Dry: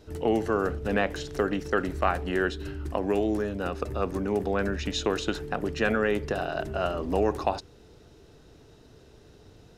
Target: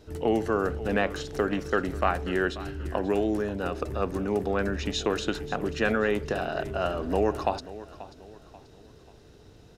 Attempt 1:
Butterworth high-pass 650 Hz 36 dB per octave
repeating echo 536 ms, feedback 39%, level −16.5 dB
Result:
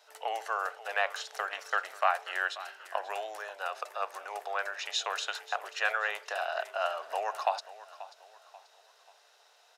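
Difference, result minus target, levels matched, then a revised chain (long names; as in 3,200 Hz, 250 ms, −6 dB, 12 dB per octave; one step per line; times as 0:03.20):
500 Hz band −5.0 dB
repeating echo 536 ms, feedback 39%, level −16.5 dB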